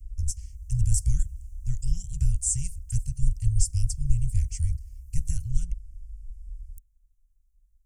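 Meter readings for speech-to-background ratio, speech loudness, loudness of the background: 17.0 dB, -29.5 LUFS, -46.5 LUFS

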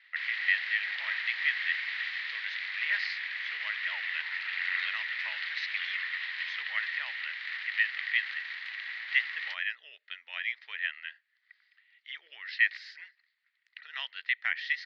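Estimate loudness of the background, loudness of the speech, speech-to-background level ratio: -34.0 LUFS, -33.5 LUFS, 0.5 dB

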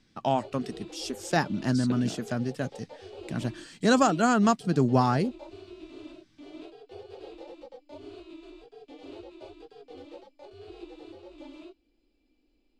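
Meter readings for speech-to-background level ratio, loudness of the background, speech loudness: 19.5 dB, -46.5 LUFS, -27.0 LUFS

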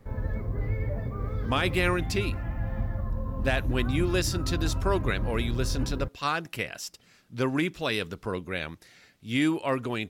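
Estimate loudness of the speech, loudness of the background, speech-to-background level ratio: -29.5 LUFS, -32.5 LUFS, 3.0 dB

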